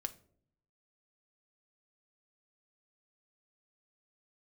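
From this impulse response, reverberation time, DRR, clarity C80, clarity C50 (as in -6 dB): not exponential, 8.0 dB, 22.0 dB, 17.5 dB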